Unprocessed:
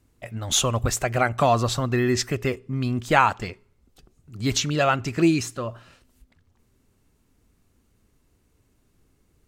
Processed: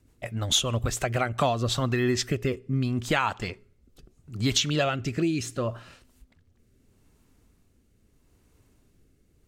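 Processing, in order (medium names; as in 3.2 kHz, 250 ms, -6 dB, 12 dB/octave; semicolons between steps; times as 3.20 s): dynamic bell 3.3 kHz, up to +7 dB, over -43 dBFS, Q 3.2; compression 3:1, threshold -24 dBFS, peak gain reduction 10 dB; rotary cabinet horn 6.7 Hz, later 0.75 Hz, at 0.90 s; trim +3 dB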